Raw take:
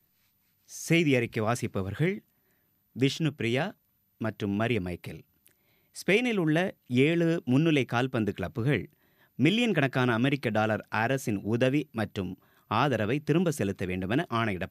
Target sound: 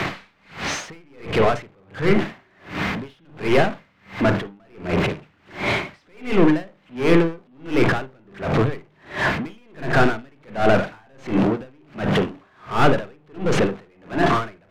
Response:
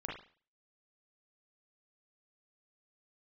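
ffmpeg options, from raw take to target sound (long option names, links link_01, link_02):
-filter_complex "[0:a]aeval=exprs='val(0)+0.5*0.0447*sgn(val(0))':channel_layout=same,lowpass=3200,asplit=2[link_01][link_02];[link_02]highpass=frequency=720:poles=1,volume=29dB,asoftclip=type=tanh:threshold=-10.5dB[link_03];[link_01][link_03]amix=inputs=2:normalize=0,lowpass=frequency=1700:poles=1,volume=-6dB,asplit=2[link_04][link_05];[1:a]atrim=start_sample=2205,lowshelf=frequency=140:gain=11.5[link_06];[link_05][link_06]afir=irnorm=-1:irlink=0,volume=-4.5dB[link_07];[link_04][link_07]amix=inputs=2:normalize=0,aeval=exprs='val(0)*pow(10,-39*(0.5-0.5*cos(2*PI*1.4*n/s))/20)':channel_layout=same"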